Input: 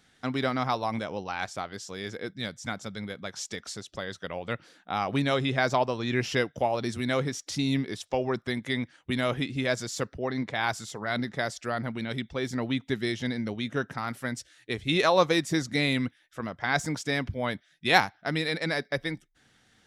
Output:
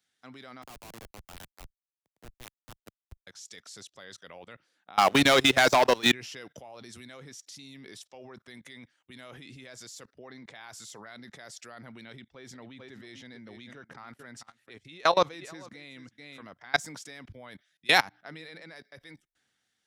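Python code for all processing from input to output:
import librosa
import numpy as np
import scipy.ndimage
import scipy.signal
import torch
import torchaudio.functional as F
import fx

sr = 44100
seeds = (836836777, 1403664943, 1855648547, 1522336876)

y = fx.chain(x, sr, fx.schmitt(flips_db=-27.5),
    fx.band_widen(depth_pct=100), at=(0.62, 3.27))
y = fx.chain(y, sr, fx.highpass(hz=230.0, slope=6),
    fx.leveller(passes=3), at=(4.98, 6.12))
y = fx.chain(y, sr, fx.lowpass(hz=3500.0, slope=6),
    fx.echo_single(ms=441, db=-14.0), at=(12.1, 16.46))
y = fx.chain(y, sr, fx.high_shelf(hz=3900.0, db=-9.5),
    fx.hum_notches(base_hz=60, count=7), at=(18.02, 18.76))
y = fx.tilt_eq(y, sr, slope=2.0)
y = fx.level_steps(y, sr, step_db=23)
y = fx.band_widen(y, sr, depth_pct=40)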